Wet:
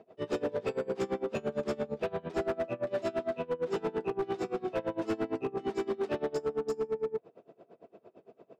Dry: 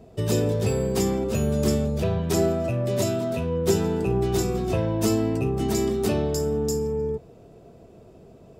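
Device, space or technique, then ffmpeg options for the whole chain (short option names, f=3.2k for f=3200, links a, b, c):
helicopter radio: -af "highpass=340,lowpass=2.6k,aeval=exprs='val(0)*pow(10,-25*(0.5-0.5*cos(2*PI*8.8*n/s))/20)':c=same,asoftclip=type=hard:threshold=-28dB,volume=2dB"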